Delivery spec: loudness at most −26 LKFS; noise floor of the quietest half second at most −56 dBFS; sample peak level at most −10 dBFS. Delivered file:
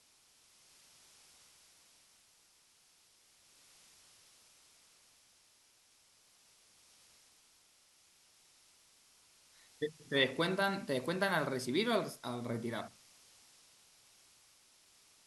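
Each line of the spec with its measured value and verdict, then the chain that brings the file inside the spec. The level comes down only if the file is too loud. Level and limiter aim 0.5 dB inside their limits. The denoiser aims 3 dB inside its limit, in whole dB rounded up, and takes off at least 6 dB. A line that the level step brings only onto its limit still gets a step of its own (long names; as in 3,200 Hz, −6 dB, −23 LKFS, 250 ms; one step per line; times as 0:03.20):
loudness −35.0 LKFS: in spec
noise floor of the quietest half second −68 dBFS: in spec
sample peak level −17.0 dBFS: in spec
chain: no processing needed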